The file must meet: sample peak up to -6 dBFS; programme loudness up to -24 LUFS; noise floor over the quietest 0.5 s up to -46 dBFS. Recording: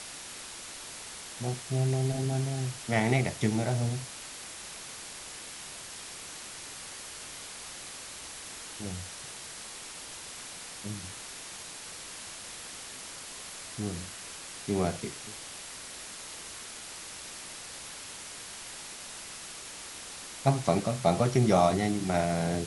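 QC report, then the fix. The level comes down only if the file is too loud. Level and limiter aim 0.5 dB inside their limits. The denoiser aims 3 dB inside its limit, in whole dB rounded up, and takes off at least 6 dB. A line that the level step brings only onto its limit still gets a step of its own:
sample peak -10.0 dBFS: pass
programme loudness -33.5 LUFS: pass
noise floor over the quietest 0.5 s -44 dBFS: fail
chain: noise reduction 6 dB, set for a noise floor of -44 dBFS

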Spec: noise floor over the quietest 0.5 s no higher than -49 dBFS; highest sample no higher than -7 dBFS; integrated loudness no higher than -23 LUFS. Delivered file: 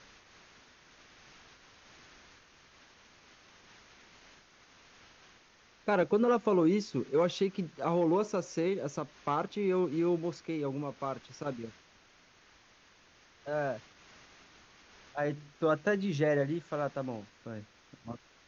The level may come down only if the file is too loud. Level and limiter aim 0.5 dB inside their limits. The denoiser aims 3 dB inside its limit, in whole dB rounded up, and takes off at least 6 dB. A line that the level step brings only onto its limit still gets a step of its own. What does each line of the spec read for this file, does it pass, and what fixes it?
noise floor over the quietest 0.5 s -62 dBFS: pass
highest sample -16.0 dBFS: pass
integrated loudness -32.0 LUFS: pass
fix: none needed

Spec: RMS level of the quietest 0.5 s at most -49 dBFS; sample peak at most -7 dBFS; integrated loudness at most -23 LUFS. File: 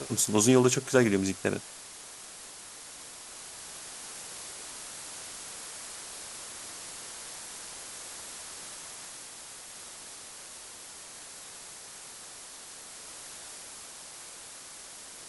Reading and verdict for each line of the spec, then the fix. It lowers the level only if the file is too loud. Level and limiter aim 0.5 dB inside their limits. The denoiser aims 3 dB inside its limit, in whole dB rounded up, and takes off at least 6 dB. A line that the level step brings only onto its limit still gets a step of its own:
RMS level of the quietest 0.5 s -46 dBFS: fail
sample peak -7.5 dBFS: pass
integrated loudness -34.0 LUFS: pass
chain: noise reduction 6 dB, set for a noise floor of -46 dBFS

